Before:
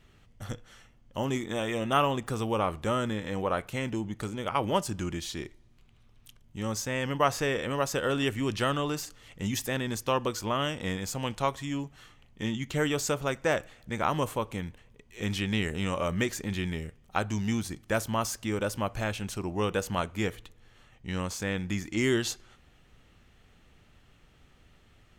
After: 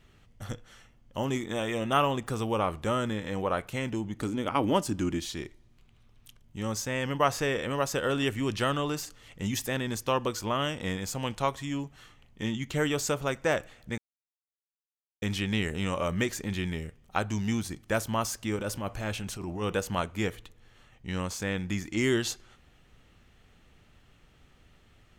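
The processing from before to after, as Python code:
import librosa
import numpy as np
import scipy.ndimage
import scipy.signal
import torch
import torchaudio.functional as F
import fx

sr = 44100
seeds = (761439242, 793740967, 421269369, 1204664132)

y = fx.peak_eq(x, sr, hz=280.0, db=10.5, octaves=0.51, at=(4.16, 5.25))
y = fx.transient(y, sr, attack_db=-11, sustain_db=2, at=(18.56, 19.75))
y = fx.edit(y, sr, fx.silence(start_s=13.98, length_s=1.24), tone=tone)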